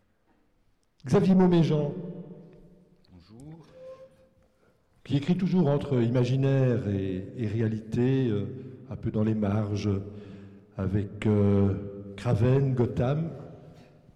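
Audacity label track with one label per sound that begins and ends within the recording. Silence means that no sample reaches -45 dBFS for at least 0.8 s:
1.000000	4.050000	sound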